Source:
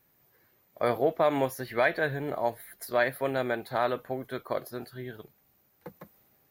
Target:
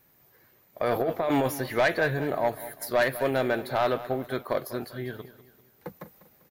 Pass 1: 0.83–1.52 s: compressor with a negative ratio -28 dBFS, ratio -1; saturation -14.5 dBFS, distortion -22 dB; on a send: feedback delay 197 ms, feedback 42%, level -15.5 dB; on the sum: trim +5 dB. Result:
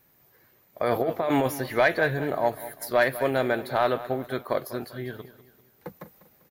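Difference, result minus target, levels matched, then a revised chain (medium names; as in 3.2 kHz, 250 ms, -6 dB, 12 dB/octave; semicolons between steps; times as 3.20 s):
saturation: distortion -9 dB
0.83–1.52 s: compressor with a negative ratio -28 dBFS, ratio -1; saturation -21 dBFS, distortion -14 dB; on a send: feedback delay 197 ms, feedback 42%, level -15.5 dB; on the sum: trim +5 dB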